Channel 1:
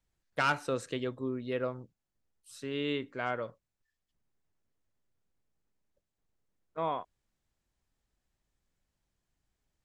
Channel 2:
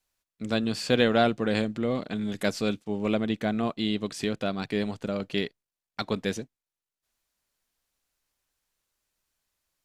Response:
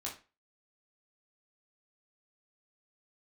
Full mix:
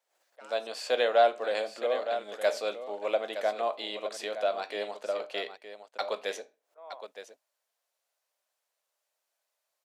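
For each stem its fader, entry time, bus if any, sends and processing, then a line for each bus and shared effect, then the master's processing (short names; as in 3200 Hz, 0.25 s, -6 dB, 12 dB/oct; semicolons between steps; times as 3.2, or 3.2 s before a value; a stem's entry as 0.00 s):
-12.0 dB, 0.00 s, no send, no echo send, backwards sustainer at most 74 dB/s; auto duck -22 dB, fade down 1.25 s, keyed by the second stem
-5.0 dB, 0.00 s, send -7 dB, echo send -9 dB, dry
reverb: on, RT60 0.30 s, pre-delay 13 ms
echo: echo 0.916 s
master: AGC gain up to 9.5 dB; ladder high-pass 520 Hz, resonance 55%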